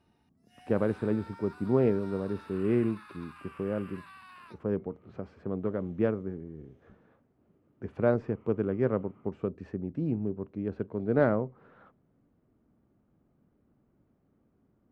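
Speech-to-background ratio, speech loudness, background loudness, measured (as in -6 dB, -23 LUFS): 19.0 dB, -31.5 LUFS, -50.5 LUFS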